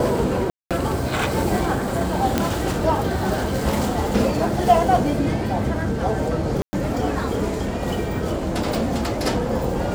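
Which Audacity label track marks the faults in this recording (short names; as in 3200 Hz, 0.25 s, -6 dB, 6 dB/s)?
0.500000	0.710000	gap 0.207 s
2.380000	2.380000	pop -4 dBFS
6.620000	6.730000	gap 0.11 s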